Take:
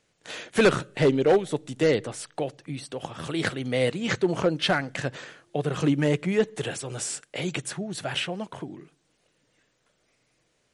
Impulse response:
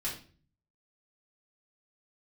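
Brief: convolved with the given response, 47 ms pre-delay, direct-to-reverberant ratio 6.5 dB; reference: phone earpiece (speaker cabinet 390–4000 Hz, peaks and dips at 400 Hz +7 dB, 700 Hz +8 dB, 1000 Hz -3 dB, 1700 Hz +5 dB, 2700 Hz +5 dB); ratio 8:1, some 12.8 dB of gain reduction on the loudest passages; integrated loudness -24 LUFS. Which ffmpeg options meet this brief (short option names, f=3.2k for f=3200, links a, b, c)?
-filter_complex "[0:a]acompressor=threshold=-29dB:ratio=8,asplit=2[a][b];[1:a]atrim=start_sample=2205,adelay=47[c];[b][c]afir=irnorm=-1:irlink=0,volume=-9.5dB[d];[a][d]amix=inputs=2:normalize=0,highpass=390,equalizer=f=400:t=q:w=4:g=7,equalizer=f=700:t=q:w=4:g=8,equalizer=f=1k:t=q:w=4:g=-3,equalizer=f=1.7k:t=q:w=4:g=5,equalizer=f=2.7k:t=q:w=4:g=5,lowpass=f=4k:w=0.5412,lowpass=f=4k:w=1.3066,volume=9dB"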